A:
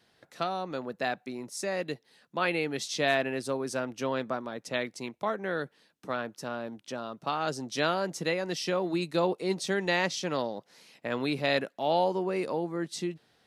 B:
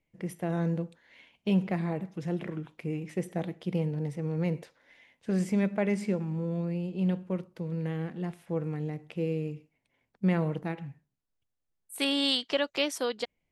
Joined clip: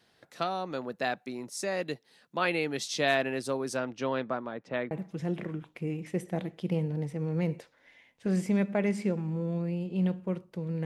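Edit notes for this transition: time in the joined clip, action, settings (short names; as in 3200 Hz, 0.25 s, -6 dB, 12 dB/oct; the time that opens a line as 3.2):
A
3.76–4.91 LPF 6200 Hz -> 1600 Hz
4.91 switch to B from 1.94 s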